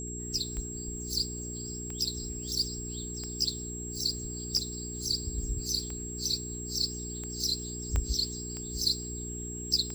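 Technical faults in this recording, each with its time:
hum 60 Hz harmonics 7 -40 dBFS
tick 45 rpm -25 dBFS
whine 7.6 kHz -39 dBFS
7.96 s: pop -17 dBFS

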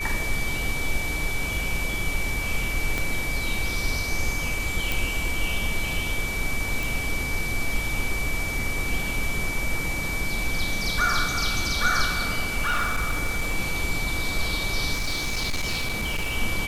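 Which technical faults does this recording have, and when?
whine 2.3 kHz -29 dBFS
2.98 s: pop -12 dBFS
4.92 s: pop
6.83 s: pop
12.65–13.55 s: clipped -19.5 dBFS
14.93–16.36 s: clipped -22.5 dBFS

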